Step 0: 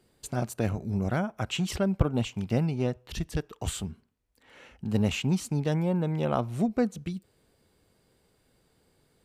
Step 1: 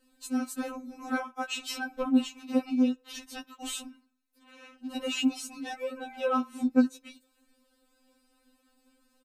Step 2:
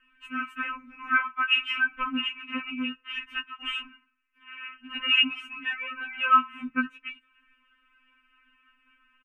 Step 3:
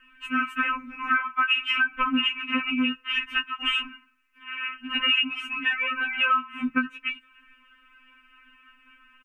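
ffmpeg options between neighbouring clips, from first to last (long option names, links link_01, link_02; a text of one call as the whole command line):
ffmpeg -i in.wav -af "aecho=1:1:7:0.43,afftfilt=real='re*3.46*eq(mod(b,12),0)':imag='im*3.46*eq(mod(b,12),0)':win_size=2048:overlap=0.75,volume=2dB" out.wav
ffmpeg -i in.wav -af "firequalizer=gain_entry='entry(170,0);entry(260,-9);entry(690,-24);entry(1100,12);entry(2800,15);entry(4000,-25)':delay=0.05:min_phase=1" out.wav
ffmpeg -i in.wav -af "acompressor=threshold=-28dB:ratio=10,volume=8.5dB" out.wav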